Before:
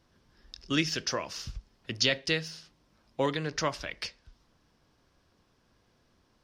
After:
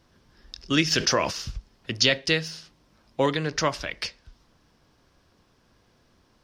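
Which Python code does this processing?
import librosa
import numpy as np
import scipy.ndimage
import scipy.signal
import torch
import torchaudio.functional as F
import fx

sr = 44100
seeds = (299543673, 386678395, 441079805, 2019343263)

y = fx.env_flatten(x, sr, amount_pct=50, at=(0.9, 1.3), fade=0.02)
y = F.gain(torch.from_numpy(y), 5.5).numpy()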